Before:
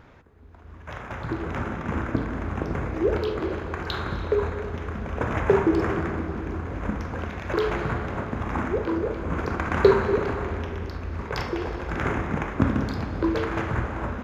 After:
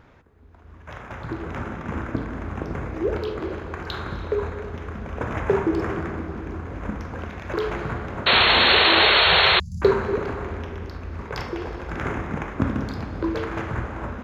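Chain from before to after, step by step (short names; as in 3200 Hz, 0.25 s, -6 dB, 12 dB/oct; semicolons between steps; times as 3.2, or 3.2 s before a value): 9.18–9.82 Chebyshev band-stop 190–4700 Hz, order 5; 8.26–9.6 painted sound noise 350–4400 Hz -15 dBFS; gain -1.5 dB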